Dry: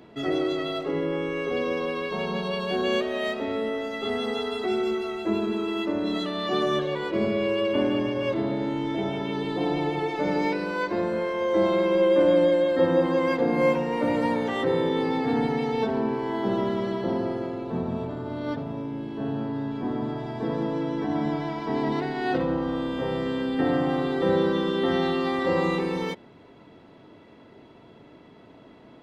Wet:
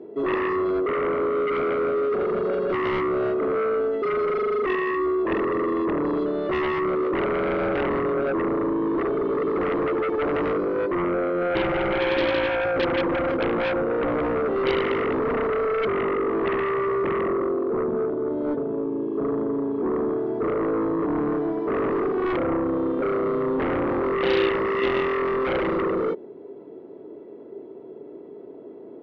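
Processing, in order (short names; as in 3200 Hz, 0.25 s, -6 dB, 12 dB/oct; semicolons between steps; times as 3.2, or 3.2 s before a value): band-pass 400 Hz, Q 4.8; in parallel at -11 dB: sine folder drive 17 dB, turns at -18 dBFS; on the sum: gain +4.5 dB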